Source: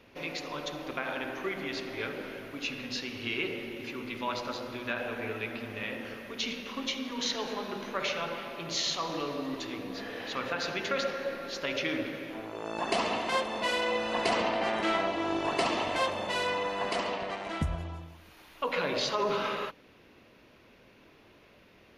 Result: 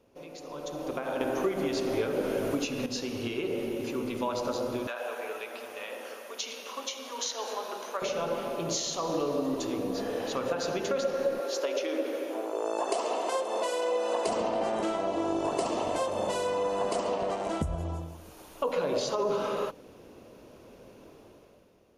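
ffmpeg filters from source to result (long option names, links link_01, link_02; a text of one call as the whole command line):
ffmpeg -i in.wav -filter_complex "[0:a]asettb=1/sr,asplit=3[link_01][link_02][link_03];[link_01]atrim=end=4.874[link_04];[link_02]atrim=start=4.87:end=8.02,asetpts=PTS-STARTPTS,afade=type=in:duration=0.004:curve=qsin,afade=type=out:start_time=3.146:duration=0.004:curve=qsin,highpass=770[link_05];[link_03]atrim=start=8.016[link_06];[link_04][link_05]acrossfade=duration=0.004:curve1=hsin:curve2=qsin[link_07];[link_07][link_06]acrossfade=duration=0.004:curve1=qsin:curve2=hsin,asettb=1/sr,asplit=3[link_08][link_09][link_10];[link_08]atrim=end=11.404[link_11];[link_09]atrim=start=11.4:end=14.27,asetpts=PTS-STARTPTS,afade=type=in:duration=0.004:curve=qsin,afade=type=out:start_time=2.866:duration=0.004:curve=qsin,highpass=frequency=330:width=0.5412,highpass=frequency=330:width=1.3066[link_12];[link_10]atrim=start=14.266[link_13];[link_11][link_12]acrossfade=duration=0.004:curve1=hsin:curve2=qsin[link_14];[link_14][link_13]acrossfade=duration=0.004:curve1=qsin:curve2=hsin,asplit=3[link_15][link_16][link_17];[link_15]atrim=end=1.212[link_18];[link_16]atrim=start=1.208:end=2.862,asetpts=PTS-STARTPTS,volume=8.5dB[link_19];[link_17]atrim=start=2.858[link_20];[link_18][link_19]acrossfade=duration=0.004:curve1=hsin:curve2=hsin[link_21];[link_21][link_20]acrossfade=duration=0.004:curve1=hsin:curve2=hsin,acompressor=threshold=-33dB:ratio=6,equalizer=frequency=500:width_type=o:width=1:gain=5,equalizer=frequency=2000:width_type=o:width=1:gain=-11,equalizer=frequency=4000:width_type=o:width=1:gain=-6,equalizer=frequency=8000:width_type=o:width=1:gain=8,dynaudnorm=framelen=120:gausssize=13:maxgain=13dB,volume=-7dB" out.wav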